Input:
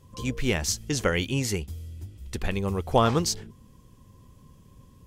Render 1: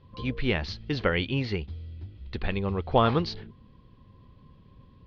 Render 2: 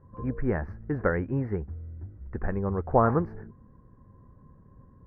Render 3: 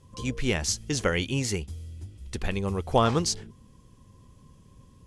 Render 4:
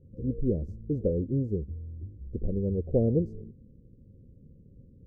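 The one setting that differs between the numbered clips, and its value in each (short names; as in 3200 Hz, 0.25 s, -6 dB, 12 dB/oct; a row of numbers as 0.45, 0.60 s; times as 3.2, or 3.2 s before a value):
elliptic low-pass, frequency: 4300, 1700, 11000, 520 Hz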